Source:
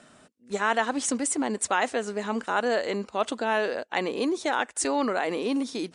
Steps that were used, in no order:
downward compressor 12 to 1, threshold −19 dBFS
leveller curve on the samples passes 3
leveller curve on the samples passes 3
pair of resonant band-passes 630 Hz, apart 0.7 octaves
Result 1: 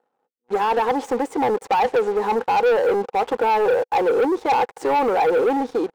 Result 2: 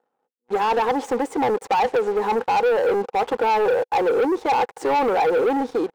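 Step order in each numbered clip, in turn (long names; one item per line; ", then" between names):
downward compressor, then second leveller curve on the samples, then pair of resonant band-passes, then first leveller curve on the samples
first leveller curve on the samples, then pair of resonant band-passes, then downward compressor, then second leveller curve on the samples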